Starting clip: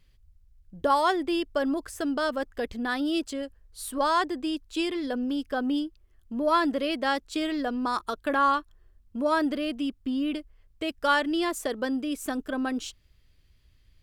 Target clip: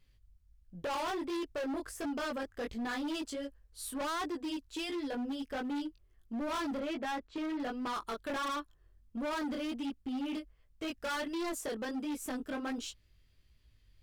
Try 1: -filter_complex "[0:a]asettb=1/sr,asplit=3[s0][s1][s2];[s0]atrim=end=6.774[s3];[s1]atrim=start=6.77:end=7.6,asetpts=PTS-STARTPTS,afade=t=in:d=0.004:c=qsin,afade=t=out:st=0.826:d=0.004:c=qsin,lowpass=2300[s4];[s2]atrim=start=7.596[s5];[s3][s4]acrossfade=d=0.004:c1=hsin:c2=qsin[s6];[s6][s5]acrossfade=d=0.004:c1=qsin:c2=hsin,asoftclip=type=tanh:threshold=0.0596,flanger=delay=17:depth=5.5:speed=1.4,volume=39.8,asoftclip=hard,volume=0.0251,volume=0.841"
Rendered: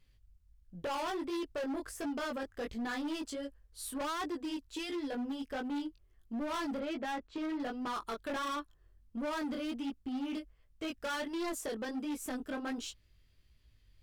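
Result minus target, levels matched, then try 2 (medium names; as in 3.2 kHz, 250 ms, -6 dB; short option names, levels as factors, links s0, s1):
saturation: distortion +11 dB
-filter_complex "[0:a]asettb=1/sr,asplit=3[s0][s1][s2];[s0]atrim=end=6.774[s3];[s1]atrim=start=6.77:end=7.6,asetpts=PTS-STARTPTS,afade=t=in:d=0.004:c=qsin,afade=t=out:st=0.826:d=0.004:c=qsin,lowpass=2300[s4];[s2]atrim=start=7.596[s5];[s3][s4]acrossfade=d=0.004:c1=hsin:c2=qsin[s6];[s6][s5]acrossfade=d=0.004:c1=qsin:c2=hsin,asoftclip=type=tanh:threshold=0.178,flanger=delay=17:depth=5.5:speed=1.4,volume=39.8,asoftclip=hard,volume=0.0251,volume=0.841"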